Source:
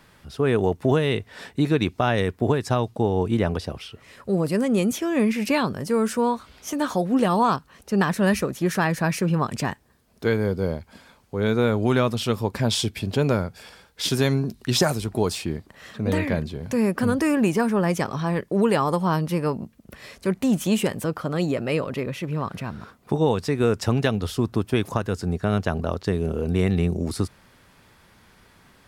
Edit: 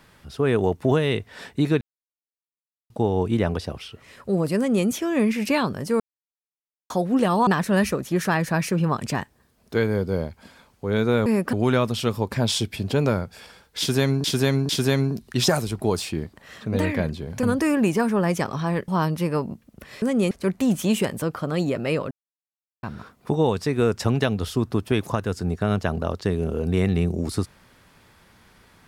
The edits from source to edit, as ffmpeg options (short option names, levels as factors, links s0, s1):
-filter_complex "[0:a]asplit=16[s0][s1][s2][s3][s4][s5][s6][s7][s8][s9][s10][s11][s12][s13][s14][s15];[s0]atrim=end=1.81,asetpts=PTS-STARTPTS,afade=t=out:st=1.806:d=0.004:c=hsin[s16];[s1]atrim=start=1.81:end=2.9,asetpts=PTS-STARTPTS,volume=0[s17];[s2]atrim=start=2.9:end=6,asetpts=PTS-STARTPTS,afade=t=in:d=0.004:c=hsin,afade=t=out:st=3.096:d=0.004:c=hsin[s18];[s3]atrim=start=6:end=6.9,asetpts=PTS-STARTPTS,volume=0[s19];[s4]atrim=start=6.9:end=7.472,asetpts=PTS-STARTPTS,afade=t=in:d=0.004:c=hsin[s20];[s5]atrim=start=7.968:end=11.762[s21];[s6]atrim=start=16.758:end=17.032[s22];[s7]atrim=start=11.758:end=14.472[s23];[s8]atrim=start=14.018:end=14.472[s24];[s9]atrim=start=14.018:end=16.762[s25];[s10]atrim=start=17.028:end=18.482[s26];[s11]atrim=start=18.988:end=20.132[s27];[s12]atrim=start=4.568:end=4.862[s28];[s13]atrim=start=20.128:end=21.93,asetpts=PTS-STARTPTS,afade=t=out:st=1.798:d=0.004:c=hsin[s29];[s14]atrim=start=21.93:end=22.65,asetpts=PTS-STARTPTS,volume=0[s30];[s15]atrim=start=22.65,asetpts=PTS-STARTPTS,afade=t=in:d=0.004:c=hsin[s31];[s16][s17][s18][s19][s20]concat=n=5:v=0:a=1[s32];[s32][s21]acrossfade=d=0.004:c1=hsin:c2=hsin[s33];[s33][s22]acrossfade=d=0.004:c1=hsin:c2=hsin[s34];[s34][s23]acrossfade=d=0.004:c1=hsin:c2=hsin[s35];[s35][s24]acrossfade=d=0.004:c1=hsin:c2=hsin[s36];[s36][s25]acrossfade=d=0.004:c1=hsin:c2=hsin[s37];[s37][s26]acrossfade=d=0.004:c1=hsin:c2=hsin[s38];[s38][s27]acrossfade=d=0.004:c1=hsin:c2=hsin[s39];[s39][s28]acrossfade=d=0.004:c1=hsin:c2=hsin[s40];[s29][s30][s31]concat=n=3:v=0:a=1[s41];[s40][s41]acrossfade=d=0.004:c1=hsin:c2=hsin"